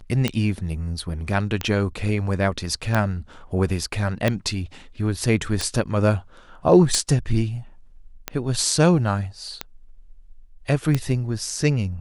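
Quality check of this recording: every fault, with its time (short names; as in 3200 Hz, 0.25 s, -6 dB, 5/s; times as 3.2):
tick 45 rpm -8 dBFS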